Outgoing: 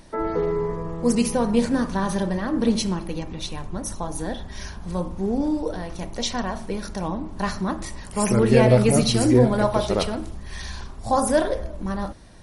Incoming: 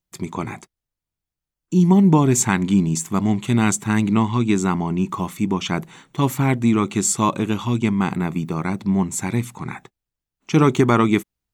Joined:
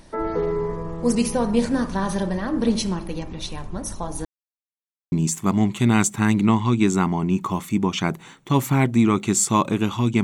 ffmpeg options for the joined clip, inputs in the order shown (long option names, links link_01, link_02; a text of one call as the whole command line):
ffmpeg -i cue0.wav -i cue1.wav -filter_complex "[0:a]apad=whole_dur=10.23,atrim=end=10.23,asplit=2[link_01][link_02];[link_01]atrim=end=4.25,asetpts=PTS-STARTPTS,afade=type=out:start_time=4.246:duration=0.004:curve=hsin[link_03];[link_02]atrim=start=4.25:end=5.12,asetpts=PTS-STARTPTS,volume=0[link_04];[1:a]atrim=start=2.8:end=7.91,asetpts=PTS-STARTPTS,afade=type=in:duration=0.004:curve=hsin[link_05];[link_03][link_04][link_05]concat=n=3:v=0:a=1" out.wav